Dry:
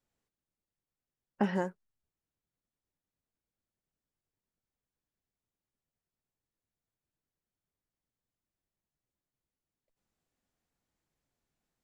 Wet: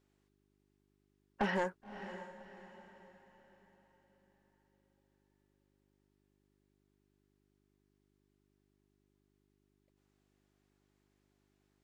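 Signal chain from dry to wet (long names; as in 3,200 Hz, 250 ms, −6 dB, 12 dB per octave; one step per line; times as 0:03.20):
mid-hump overdrive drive 20 dB, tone 4,100 Hz, clips at −15 dBFS
feedback delay with all-pass diffusion 573 ms, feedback 41%, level −12 dB
hum with harmonics 50 Hz, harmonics 8, −70 dBFS −1 dB per octave
level −7 dB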